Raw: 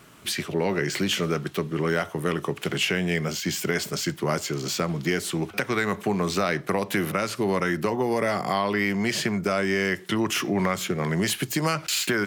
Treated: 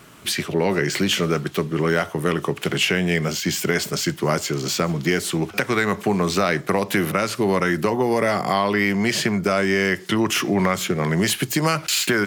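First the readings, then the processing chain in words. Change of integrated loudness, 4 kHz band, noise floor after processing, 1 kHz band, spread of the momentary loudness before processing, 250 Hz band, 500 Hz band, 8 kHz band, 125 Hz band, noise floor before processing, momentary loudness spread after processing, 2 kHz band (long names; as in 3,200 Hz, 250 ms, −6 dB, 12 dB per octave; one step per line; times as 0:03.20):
+4.5 dB, +4.5 dB, −39 dBFS, +4.5 dB, 4 LU, +4.5 dB, +4.5 dB, +4.5 dB, +4.5 dB, −44 dBFS, 4 LU, +4.5 dB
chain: delay with a high-pass on its return 436 ms, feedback 69%, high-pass 5,300 Hz, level −23.5 dB
level +4.5 dB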